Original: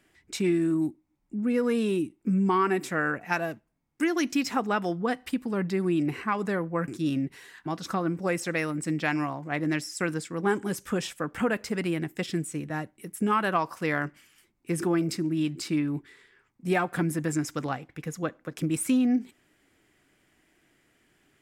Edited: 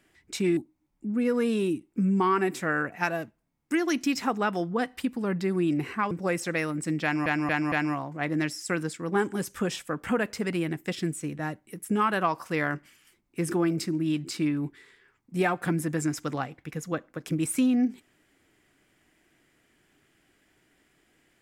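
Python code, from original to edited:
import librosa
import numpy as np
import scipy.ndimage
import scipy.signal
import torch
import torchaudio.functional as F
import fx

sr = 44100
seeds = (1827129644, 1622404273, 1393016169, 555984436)

y = fx.edit(x, sr, fx.cut(start_s=0.57, length_s=0.29),
    fx.cut(start_s=6.4, length_s=1.71),
    fx.stutter(start_s=9.03, slice_s=0.23, count=4), tone=tone)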